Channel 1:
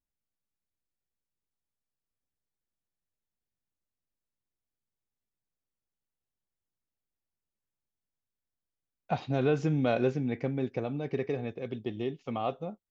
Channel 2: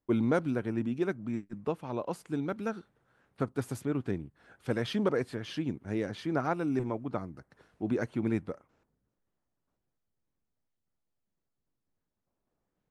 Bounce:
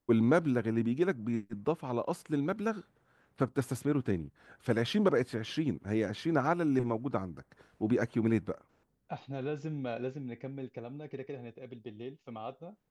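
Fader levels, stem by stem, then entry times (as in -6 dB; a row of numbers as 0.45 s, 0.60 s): -9.5 dB, +1.5 dB; 0.00 s, 0.00 s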